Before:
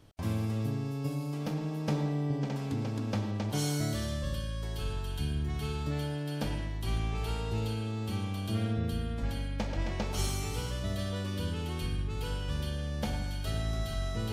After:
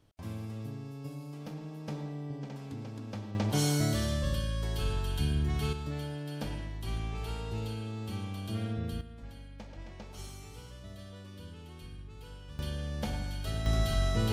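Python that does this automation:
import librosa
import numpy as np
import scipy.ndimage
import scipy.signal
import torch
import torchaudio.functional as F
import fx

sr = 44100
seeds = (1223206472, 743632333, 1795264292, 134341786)

y = fx.gain(x, sr, db=fx.steps((0.0, -8.0), (3.35, 3.0), (5.73, -3.5), (9.01, -13.0), (12.59, -1.5), (13.66, 5.0)))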